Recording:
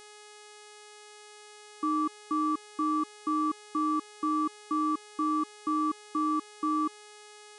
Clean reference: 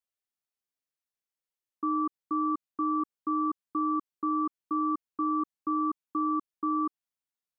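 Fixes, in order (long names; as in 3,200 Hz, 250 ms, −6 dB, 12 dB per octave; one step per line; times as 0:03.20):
hum removal 419.3 Hz, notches 24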